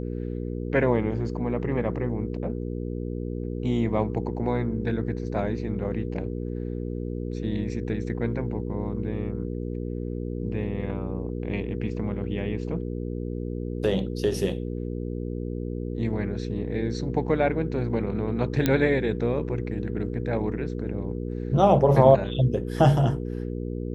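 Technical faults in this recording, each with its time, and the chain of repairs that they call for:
hum 60 Hz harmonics 8 -31 dBFS
18.66 s: pop -8 dBFS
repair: de-click; de-hum 60 Hz, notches 8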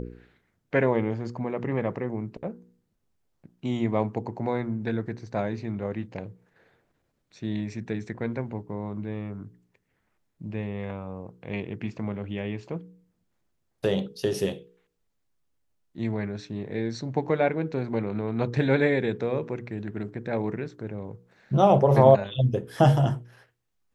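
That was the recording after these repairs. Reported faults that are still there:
nothing left

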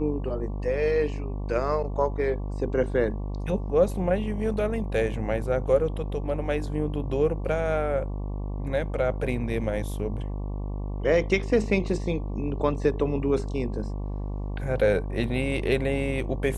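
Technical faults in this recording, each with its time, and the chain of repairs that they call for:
buzz 50 Hz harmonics 23 -31 dBFS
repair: de-hum 50 Hz, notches 23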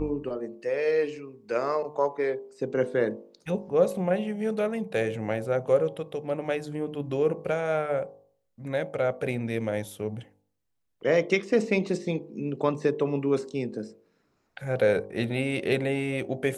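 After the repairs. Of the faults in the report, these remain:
nothing left

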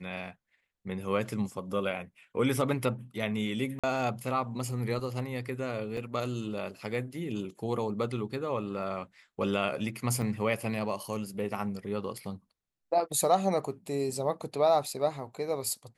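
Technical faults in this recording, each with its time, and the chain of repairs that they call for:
3.79–3.84 s: dropout 46 ms
5.97 s: dropout 2.8 ms
10.22 s: dropout 3.8 ms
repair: interpolate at 3.79 s, 46 ms; interpolate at 5.97 s, 2.8 ms; interpolate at 10.22 s, 3.8 ms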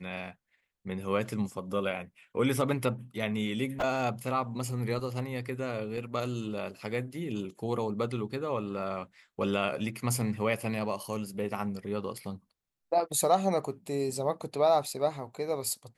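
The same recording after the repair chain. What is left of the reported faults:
nothing left

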